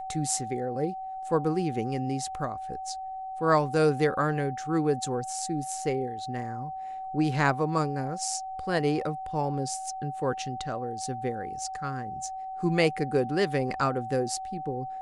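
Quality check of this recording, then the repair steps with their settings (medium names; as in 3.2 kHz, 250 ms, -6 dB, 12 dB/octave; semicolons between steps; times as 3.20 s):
whine 760 Hz -34 dBFS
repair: band-stop 760 Hz, Q 30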